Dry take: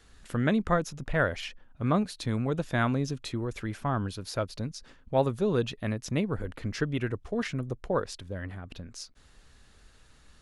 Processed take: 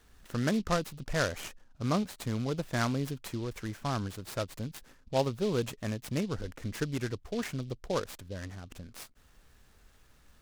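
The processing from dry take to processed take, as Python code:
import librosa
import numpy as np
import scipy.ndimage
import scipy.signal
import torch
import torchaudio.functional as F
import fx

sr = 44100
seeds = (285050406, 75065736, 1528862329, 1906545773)

y = fx.noise_mod_delay(x, sr, seeds[0], noise_hz=3600.0, depth_ms=0.052)
y = y * librosa.db_to_amplitude(-3.5)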